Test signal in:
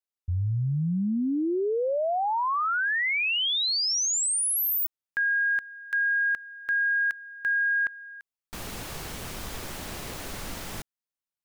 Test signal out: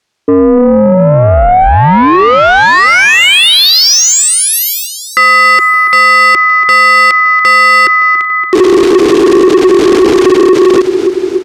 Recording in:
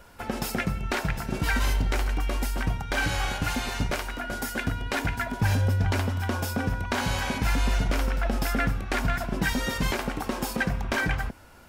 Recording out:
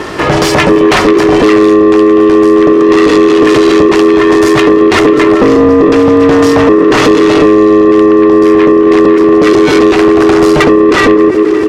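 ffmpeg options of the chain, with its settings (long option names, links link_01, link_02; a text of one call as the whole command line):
ffmpeg -i in.wav -filter_complex "[0:a]aecho=1:1:284|568|852|1136|1420:0.112|0.0673|0.0404|0.0242|0.0145,asubboost=boost=10:cutoff=61,lowpass=5800,asplit=2[link_01][link_02];[link_02]acontrast=71,volume=-0.5dB[link_03];[link_01][link_03]amix=inputs=2:normalize=0,aeval=exprs='val(0)*sin(2*PI*370*n/s)':channel_layout=same,acompressor=threshold=-17dB:ratio=12:attack=79:release=136:knee=1:detection=rms,highpass=43,asoftclip=type=tanh:threshold=-20dB,alimiter=level_in=26dB:limit=-1dB:release=50:level=0:latency=1,volume=-1dB" out.wav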